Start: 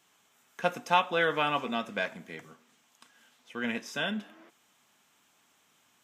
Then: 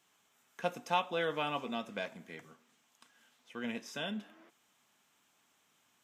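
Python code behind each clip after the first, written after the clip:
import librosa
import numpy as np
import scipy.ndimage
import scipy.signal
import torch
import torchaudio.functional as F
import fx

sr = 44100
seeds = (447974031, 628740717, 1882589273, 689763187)

y = fx.dynamic_eq(x, sr, hz=1600.0, q=1.3, threshold_db=-42.0, ratio=4.0, max_db=-6)
y = y * librosa.db_to_amplitude(-5.0)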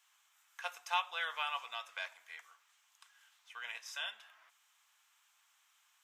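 y = scipy.signal.sosfilt(scipy.signal.butter(4, 940.0, 'highpass', fs=sr, output='sos'), x)
y = y * librosa.db_to_amplitude(1.0)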